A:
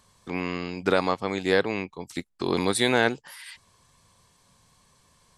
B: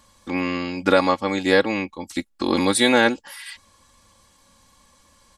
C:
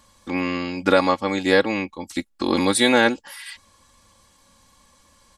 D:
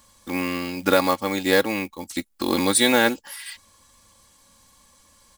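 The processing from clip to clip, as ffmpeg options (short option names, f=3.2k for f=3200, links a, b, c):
-af "aecho=1:1:3.6:0.75,volume=3.5dB"
-af anull
-af "acrusher=bits=5:mode=log:mix=0:aa=0.000001,crystalizer=i=1:c=0,volume=-2dB"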